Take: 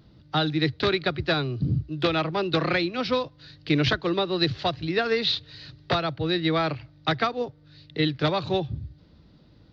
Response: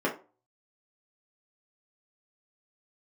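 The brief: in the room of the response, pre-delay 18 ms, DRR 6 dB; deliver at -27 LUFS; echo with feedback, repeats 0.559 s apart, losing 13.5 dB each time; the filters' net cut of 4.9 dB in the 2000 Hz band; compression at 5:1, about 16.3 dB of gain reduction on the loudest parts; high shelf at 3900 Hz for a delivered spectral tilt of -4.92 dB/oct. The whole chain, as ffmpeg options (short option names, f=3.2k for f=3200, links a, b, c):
-filter_complex "[0:a]equalizer=f=2k:t=o:g=-5,highshelf=f=3.9k:g=-6,acompressor=threshold=-39dB:ratio=5,aecho=1:1:559|1118:0.211|0.0444,asplit=2[a][b];[1:a]atrim=start_sample=2205,adelay=18[c];[b][c]afir=irnorm=-1:irlink=0,volume=-17dB[d];[a][d]amix=inputs=2:normalize=0,volume=13dB"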